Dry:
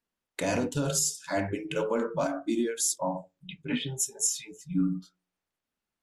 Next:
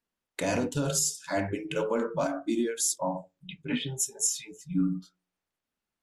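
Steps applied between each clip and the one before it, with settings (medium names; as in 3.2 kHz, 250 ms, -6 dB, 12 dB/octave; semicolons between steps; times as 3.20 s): no audible change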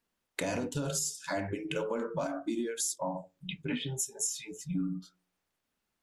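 compression 3:1, threshold -38 dBFS, peak gain reduction 12 dB; trim +4.5 dB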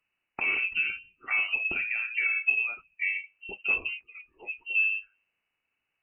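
small resonant body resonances 300/640 Hz, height 11 dB, ringing for 45 ms; frequency inversion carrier 2.9 kHz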